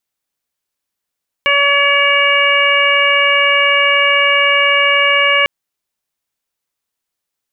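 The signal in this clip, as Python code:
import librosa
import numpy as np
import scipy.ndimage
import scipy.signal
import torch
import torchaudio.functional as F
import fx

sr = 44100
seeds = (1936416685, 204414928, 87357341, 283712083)

y = fx.additive_steady(sr, length_s=4.0, hz=567.0, level_db=-18.0, upper_db=(1, 1.0, 5.0, 2.5))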